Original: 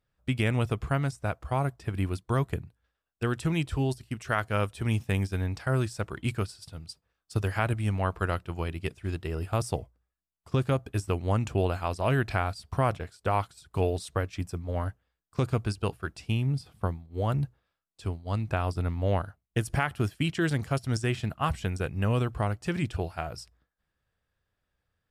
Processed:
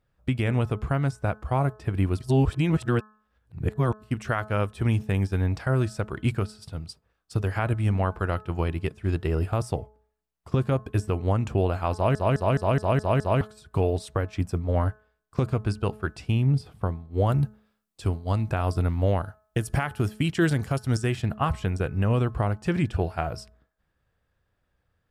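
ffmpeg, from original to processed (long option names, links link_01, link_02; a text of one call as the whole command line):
ffmpeg -i in.wav -filter_complex "[0:a]asettb=1/sr,asplit=3[link_01][link_02][link_03];[link_01]atrim=end=17.264[link_04];[link_02]atrim=start=17.26:end=21.22,asetpts=PTS-STARTPTS,afade=type=in:duration=0.004:curve=qsin,afade=type=out:start_time=3.956:duration=0.004:curve=qsin,highshelf=frequency=5100:gain=8.5[link_05];[link_03]atrim=start=21.216[link_06];[link_04][link_05]acrossfade=duration=0.004:curve1=hsin:curve2=qsin[link_07];[link_07][link_06]acrossfade=duration=0.004:curve1=qsin:curve2=hsin,asplit=10[link_08][link_09][link_10][link_11][link_12][link_13][link_14][link_15][link_16][link_17];[link_08]atrim=end=2.202[link_18];[link_09]atrim=start=2.198:end=4.022,asetpts=PTS-STARTPTS,areverse[link_19];[link_10]atrim=start=4.018:end=12.152[link_20];[link_11]atrim=start=11.938:end=12.152[link_21];[link_12]atrim=start=11.938:end=12.152[link_22];[link_13]atrim=start=11.938:end=12.152[link_23];[link_14]atrim=start=11.938:end=12.152[link_24];[link_15]atrim=start=11.938:end=12.152[link_25];[link_16]atrim=start=11.938:end=12.152[link_26];[link_17]atrim=start=13.408[link_27];[link_18][link_19]acrossfade=duration=0.004:curve1=hsin:curve2=hsin[link_28];[link_28][link_20]acrossfade=duration=0.004:curve1=hsin:curve2=hsin[link_29];[link_29][link_21]acrossfade=duration=0.004:curve1=hsin:curve2=hsin[link_30];[link_30][link_22]acrossfade=duration=0.004:curve1=hsin:curve2=hsin[link_31];[link_31][link_23]acrossfade=duration=0.004:curve1=hsin:curve2=hsin[link_32];[link_32][link_24]acrossfade=duration=0.004:curve1=hsin:curve2=hsin[link_33];[link_33][link_25]acrossfade=duration=0.004:curve1=hsin:curve2=hsin[link_34];[link_34][link_26]acrossfade=duration=0.004:curve1=hsin:curve2=hsin[link_35];[link_35][link_27]acrossfade=duration=0.004:curve1=hsin:curve2=hsin,alimiter=limit=-19dB:level=0:latency=1:release=320,highshelf=frequency=2300:gain=-8,bandreject=frequency=214:width_type=h:width=4,bandreject=frequency=428:width_type=h:width=4,bandreject=frequency=642:width_type=h:width=4,bandreject=frequency=856:width_type=h:width=4,bandreject=frequency=1070:width_type=h:width=4,bandreject=frequency=1284:width_type=h:width=4,bandreject=frequency=1498:width_type=h:width=4,bandreject=frequency=1712:width_type=h:width=4,volume=7.5dB" out.wav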